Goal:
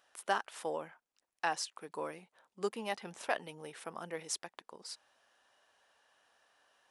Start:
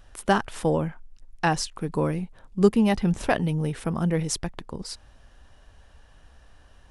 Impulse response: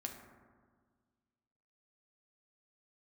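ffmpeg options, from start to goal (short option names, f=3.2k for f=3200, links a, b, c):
-af "highpass=580,volume=-8.5dB"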